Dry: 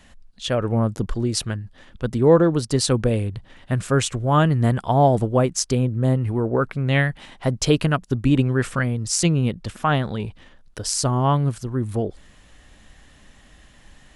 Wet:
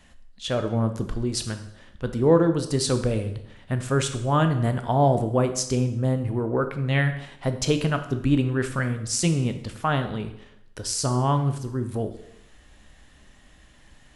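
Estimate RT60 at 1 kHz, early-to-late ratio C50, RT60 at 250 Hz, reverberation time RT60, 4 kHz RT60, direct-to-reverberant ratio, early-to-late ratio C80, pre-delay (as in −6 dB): 0.75 s, 10.5 dB, 0.75 s, 0.75 s, 0.70 s, 7.5 dB, 13.0 dB, 7 ms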